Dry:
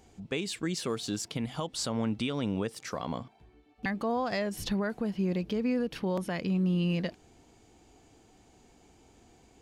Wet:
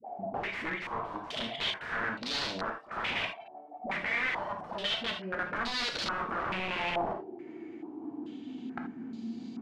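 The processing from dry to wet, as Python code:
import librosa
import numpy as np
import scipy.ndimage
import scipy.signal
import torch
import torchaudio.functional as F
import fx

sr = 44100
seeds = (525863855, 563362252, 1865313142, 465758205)

y = fx.low_shelf(x, sr, hz=95.0, db=7.0)
y = fx.level_steps(y, sr, step_db=21)
y = fx.graphic_eq_10(y, sr, hz=(125, 250, 500), db=(10, 9, -4))
y = fx.rider(y, sr, range_db=10, speed_s=2.0)
y = fx.filter_sweep_highpass(y, sr, from_hz=640.0, to_hz=230.0, start_s=5.13, end_s=9.09, q=7.1)
y = 10.0 ** (-35.5 / 20.0) * np.tanh(y / 10.0 ** (-35.5 / 20.0))
y = fx.dispersion(y, sr, late='highs', ms=67.0, hz=660.0)
y = (np.mod(10.0 ** (40.5 / 20.0) * y + 1.0, 2.0) - 1.0) / 10.0 ** (40.5 / 20.0)
y = fx.rev_gated(y, sr, seeds[0], gate_ms=100, shape='flat', drr_db=3.0)
y = fx.filter_held_lowpass(y, sr, hz=2.3, low_hz=780.0, high_hz=4300.0)
y = F.gain(torch.from_numpy(y), 8.0).numpy()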